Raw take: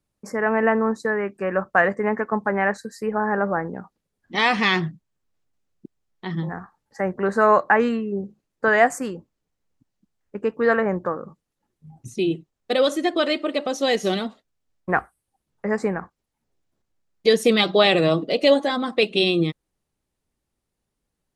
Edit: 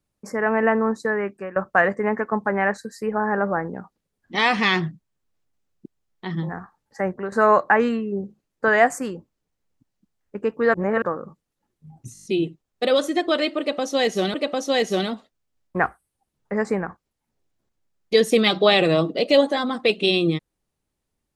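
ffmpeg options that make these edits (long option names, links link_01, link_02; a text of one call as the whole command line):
ffmpeg -i in.wav -filter_complex "[0:a]asplit=12[link_01][link_02][link_03][link_04][link_05][link_06][link_07][link_08][link_09][link_10][link_11][link_12];[link_01]atrim=end=1.56,asetpts=PTS-STARTPTS,afade=type=out:start_time=1.28:duration=0.28:silence=0.133352[link_13];[link_02]atrim=start=1.56:end=7.32,asetpts=PTS-STARTPTS,afade=type=in:duration=0.004:curve=hsin:silence=0.133352,afade=type=out:start_time=5.51:duration=0.25:silence=0.266073[link_14];[link_03]atrim=start=7.32:end=10.742,asetpts=PTS-STARTPTS,afade=type=in:duration=0.004:curve=hsin:silence=0.266073[link_15];[link_04]atrim=start=10.738:end=11.022,asetpts=PTS-STARTPTS,areverse[link_16];[link_05]atrim=start=11.018:end=12.152[link_17];[link_06]atrim=start=12.128:end=12.152[link_18];[link_07]atrim=start=12.128:end=12.152[link_19];[link_08]atrim=start=12.128:end=12.152[link_20];[link_09]atrim=start=12.128:end=12.152[link_21];[link_10]atrim=start=12.128:end=12.152[link_22];[link_11]atrim=start=12.128:end=14.222[link_23];[link_12]atrim=start=13.468[link_24];[link_13][link_14][link_15]concat=n=3:v=0:a=1[link_25];[link_25][link_16]acrossfade=duration=0.004:curve1=hsin:curve2=hsin[link_26];[link_26][link_17]acrossfade=duration=0.004:curve1=hsin:curve2=hsin[link_27];[link_27][link_18]acrossfade=duration=0.004:curve1=hsin:curve2=hsin[link_28];[link_28][link_19]acrossfade=duration=0.004:curve1=hsin:curve2=hsin[link_29];[link_29][link_20]acrossfade=duration=0.004:curve1=hsin:curve2=hsin[link_30];[link_30][link_21]acrossfade=duration=0.004:curve1=hsin:curve2=hsin[link_31];[link_31][link_22]acrossfade=duration=0.004:curve1=hsin:curve2=hsin[link_32];[link_32][link_23]acrossfade=duration=0.004:curve1=hsin:curve2=hsin[link_33];[link_33][link_24]acrossfade=duration=0.004:curve1=hsin:curve2=hsin" out.wav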